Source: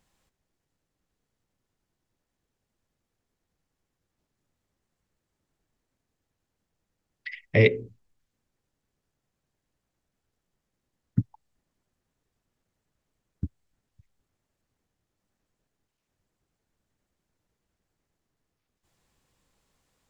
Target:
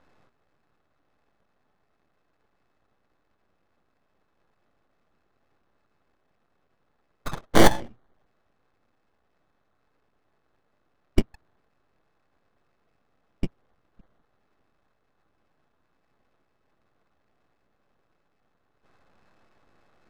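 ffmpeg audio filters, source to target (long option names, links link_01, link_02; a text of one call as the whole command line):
ffmpeg -i in.wav -af "crystalizer=i=3.5:c=0,acrusher=samples=17:mix=1:aa=0.000001,adynamicsmooth=sensitivity=6.5:basefreq=2500,aeval=exprs='abs(val(0))':channel_layout=same,bandreject=frequency=940:width=16,volume=6dB" out.wav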